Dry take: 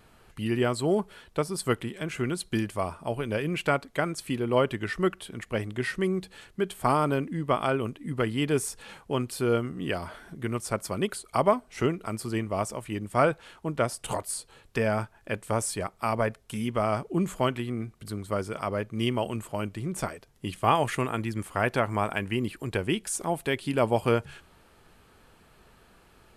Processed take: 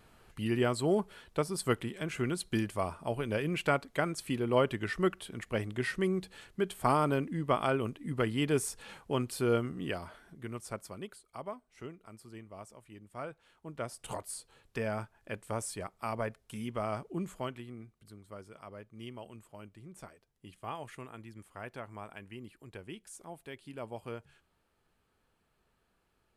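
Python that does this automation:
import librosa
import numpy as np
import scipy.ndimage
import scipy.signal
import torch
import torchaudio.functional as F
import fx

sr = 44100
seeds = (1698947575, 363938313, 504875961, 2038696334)

y = fx.gain(x, sr, db=fx.line((9.73, -3.5), (10.23, -10.5), (10.73, -10.5), (11.28, -19.0), (13.29, -19.0), (14.1, -8.5), (17.02, -8.5), (18.19, -18.0)))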